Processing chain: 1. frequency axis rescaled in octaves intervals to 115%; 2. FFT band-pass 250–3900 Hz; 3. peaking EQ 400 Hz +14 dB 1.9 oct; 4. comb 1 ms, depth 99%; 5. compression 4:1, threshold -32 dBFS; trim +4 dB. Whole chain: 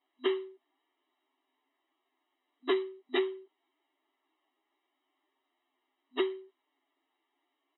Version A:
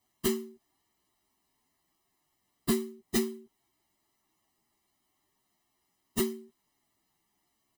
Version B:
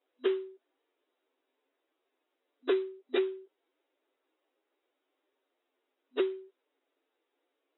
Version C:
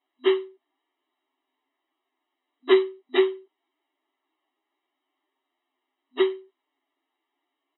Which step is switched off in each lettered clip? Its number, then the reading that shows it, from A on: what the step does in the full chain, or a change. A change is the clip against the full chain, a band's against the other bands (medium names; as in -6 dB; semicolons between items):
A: 2, 250 Hz band +8.5 dB; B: 4, 1 kHz band -5.0 dB; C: 5, mean gain reduction 6.0 dB